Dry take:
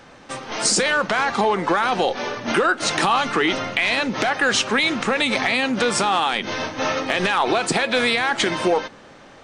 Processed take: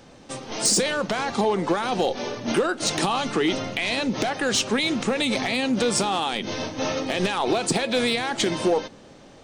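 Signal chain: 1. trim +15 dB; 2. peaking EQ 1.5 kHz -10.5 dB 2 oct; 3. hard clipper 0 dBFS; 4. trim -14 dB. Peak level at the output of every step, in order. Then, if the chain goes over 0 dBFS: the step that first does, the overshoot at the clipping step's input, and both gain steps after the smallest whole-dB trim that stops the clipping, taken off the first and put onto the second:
+8.5 dBFS, +6.5 dBFS, 0.0 dBFS, -14.0 dBFS; step 1, 6.5 dB; step 1 +8 dB, step 4 -7 dB

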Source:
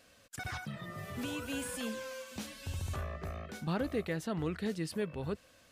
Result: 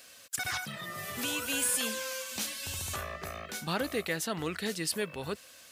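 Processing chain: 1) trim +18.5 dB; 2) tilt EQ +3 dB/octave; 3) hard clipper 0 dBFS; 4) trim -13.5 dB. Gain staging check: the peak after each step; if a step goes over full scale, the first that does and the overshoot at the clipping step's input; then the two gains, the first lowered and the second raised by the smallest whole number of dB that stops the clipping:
-4.0 dBFS, -3.0 dBFS, -3.0 dBFS, -16.5 dBFS; nothing clips

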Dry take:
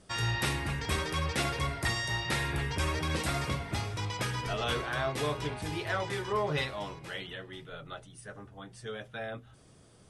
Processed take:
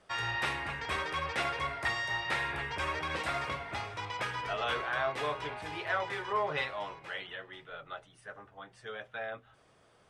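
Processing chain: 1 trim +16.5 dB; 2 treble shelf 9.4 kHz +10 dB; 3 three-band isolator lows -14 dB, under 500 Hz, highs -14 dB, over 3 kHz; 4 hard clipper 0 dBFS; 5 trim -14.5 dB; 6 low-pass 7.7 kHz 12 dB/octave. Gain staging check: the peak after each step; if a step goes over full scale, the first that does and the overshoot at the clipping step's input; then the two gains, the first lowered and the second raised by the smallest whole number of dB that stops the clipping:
-1.5 dBFS, -0.5 dBFS, -4.0 dBFS, -4.0 dBFS, -18.5 dBFS, -18.5 dBFS; nothing clips

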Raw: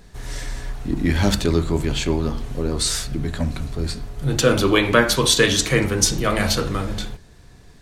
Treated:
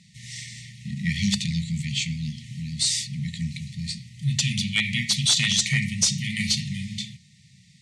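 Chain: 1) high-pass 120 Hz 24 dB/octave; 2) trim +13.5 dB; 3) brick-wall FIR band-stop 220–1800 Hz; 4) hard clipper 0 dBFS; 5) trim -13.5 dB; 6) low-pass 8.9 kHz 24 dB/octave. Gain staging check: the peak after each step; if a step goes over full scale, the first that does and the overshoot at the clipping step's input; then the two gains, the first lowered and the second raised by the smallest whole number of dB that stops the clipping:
-1.0 dBFS, +12.5 dBFS, +10.0 dBFS, 0.0 dBFS, -13.5 dBFS, -11.0 dBFS; step 2, 10.0 dB; step 2 +3.5 dB, step 5 -3.5 dB

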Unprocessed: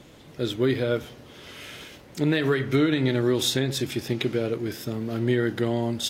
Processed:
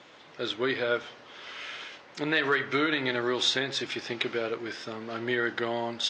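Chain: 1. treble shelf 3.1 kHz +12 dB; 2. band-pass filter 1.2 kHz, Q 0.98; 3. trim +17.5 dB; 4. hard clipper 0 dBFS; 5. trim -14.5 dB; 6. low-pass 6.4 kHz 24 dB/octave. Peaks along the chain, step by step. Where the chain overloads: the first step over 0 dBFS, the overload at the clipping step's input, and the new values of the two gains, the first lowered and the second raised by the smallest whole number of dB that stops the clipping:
-4.0 dBFS, -12.0 dBFS, +5.5 dBFS, 0.0 dBFS, -14.5 dBFS, -13.0 dBFS; step 3, 5.5 dB; step 3 +11.5 dB, step 5 -8.5 dB

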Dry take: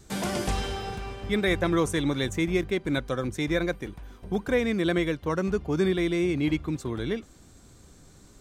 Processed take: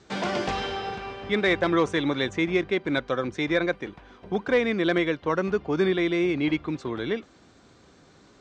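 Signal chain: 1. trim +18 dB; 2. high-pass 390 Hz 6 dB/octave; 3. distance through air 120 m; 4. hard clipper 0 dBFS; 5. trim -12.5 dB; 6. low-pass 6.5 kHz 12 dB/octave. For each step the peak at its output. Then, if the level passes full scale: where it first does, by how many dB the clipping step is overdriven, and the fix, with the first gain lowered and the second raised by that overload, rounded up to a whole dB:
+6.0 dBFS, +5.5 dBFS, +4.5 dBFS, 0.0 dBFS, -12.5 dBFS, -12.0 dBFS; step 1, 4.5 dB; step 1 +13 dB, step 5 -7.5 dB

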